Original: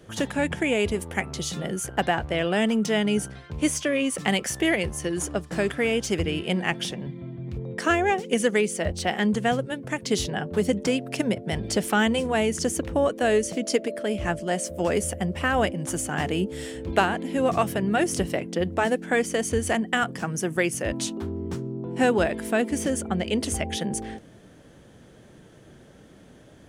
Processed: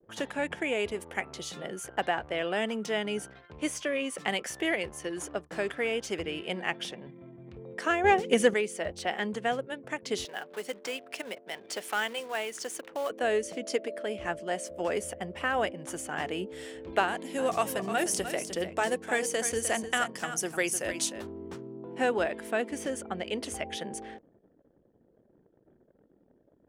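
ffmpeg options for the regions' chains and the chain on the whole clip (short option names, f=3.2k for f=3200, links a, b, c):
-filter_complex "[0:a]asettb=1/sr,asplit=3[a][b][c];[a]atrim=end=8.044[d];[b]atrim=start=8.04:end=8.54,asetpts=PTS-STARTPTS,afade=t=in:d=0.004:c=qsin,afade=t=out:st=0.496:d=0.004:c=qsin,equalizer=f=65:t=o:w=2.3:g=13.5,acontrast=56[e];[c]atrim=start=8.536[f];[d][e]acrossfade=d=0.004:c1=hsin:c2=qsin[g];[g][f]acrossfade=d=0.004:c1=qsin:c2=hsin,asettb=1/sr,asplit=3[h][i][j];[h]atrim=end=10.254[k];[i]atrim=start=10.25:end=13.1,asetpts=PTS-STARTPTS,afade=t=in:d=0.004:c=qsin,afade=t=out:st=2.846:d=0.004:c=qsin,highpass=200,lowshelf=f=490:g=-12,acrusher=bits=3:mode=log:mix=0:aa=0.000001[l];[j]atrim=start=13.096[m];[k][l]acrossfade=d=0.004:c1=hsin:c2=qsin[n];[n][m]acrossfade=d=0.004:c1=qsin:c2=hsin,asettb=1/sr,asplit=3[o][p][q];[o]atrim=end=17.084[r];[p]atrim=start=17.08:end=21.27,asetpts=PTS-STARTPTS,afade=t=in:d=0.004:c=qsin,afade=t=out:st=4.186:d=0.004:c=qsin,bass=f=250:g=1,treble=f=4k:g=11,bandreject=f=155.8:t=h:w=4,bandreject=f=311.6:t=h:w=4,bandreject=f=467.4:t=h:w=4,bandreject=f=623.2:t=h:w=4,bandreject=f=779:t=h:w=4,bandreject=f=934.8:t=h:w=4,bandreject=f=1.0906k:t=h:w=4,aecho=1:1:304:0.316,atrim=end_sample=184779[s];[q]atrim=start=21.266[t];[r][s]acrossfade=d=0.004:c1=hsin:c2=qsin[u];[u][t]acrossfade=d=0.004:c1=qsin:c2=hsin,anlmdn=0.0251,bass=f=250:g=-13,treble=f=4k:g=-5,volume=-4.5dB"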